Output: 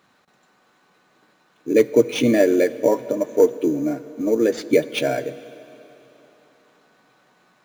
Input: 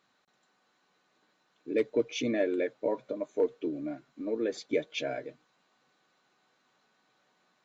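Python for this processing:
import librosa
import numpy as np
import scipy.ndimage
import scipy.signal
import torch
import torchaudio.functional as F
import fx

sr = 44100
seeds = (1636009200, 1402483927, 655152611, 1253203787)

p1 = scipy.signal.sosfilt(scipy.signal.butter(2, 49.0, 'highpass', fs=sr, output='sos'), x)
p2 = fx.low_shelf(p1, sr, hz=110.0, db=7.5)
p3 = fx.sample_hold(p2, sr, seeds[0], rate_hz=6500.0, jitter_pct=0)
p4 = p2 + F.gain(torch.from_numpy(p3), -5.5).numpy()
p5 = fx.rev_plate(p4, sr, seeds[1], rt60_s=3.6, hf_ratio=0.9, predelay_ms=0, drr_db=15.5)
y = F.gain(torch.from_numpy(p5), 8.5).numpy()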